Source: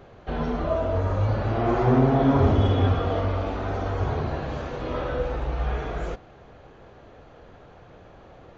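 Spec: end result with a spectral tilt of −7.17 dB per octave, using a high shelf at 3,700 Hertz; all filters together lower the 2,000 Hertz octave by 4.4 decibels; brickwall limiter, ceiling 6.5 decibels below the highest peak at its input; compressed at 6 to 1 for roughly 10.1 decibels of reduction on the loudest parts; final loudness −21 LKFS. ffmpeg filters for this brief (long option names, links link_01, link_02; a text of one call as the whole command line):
ffmpeg -i in.wav -af "equalizer=frequency=2000:width_type=o:gain=-7,highshelf=frequency=3700:gain=3.5,acompressor=threshold=-26dB:ratio=6,volume=13dB,alimiter=limit=-11.5dB:level=0:latency=1" out.wav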